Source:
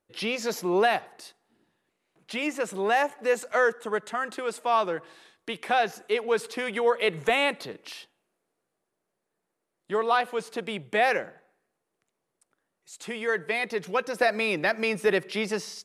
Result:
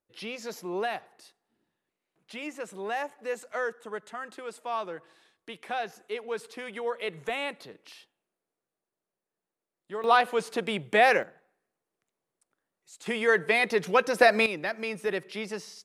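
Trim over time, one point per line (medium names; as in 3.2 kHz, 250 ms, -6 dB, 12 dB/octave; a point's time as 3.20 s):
-8.5 dB
from 10.04 s +2.5 dB
from 11.23 s -5 dB
from 13.06 s +4 dB
from 14.46 s -6.5 dB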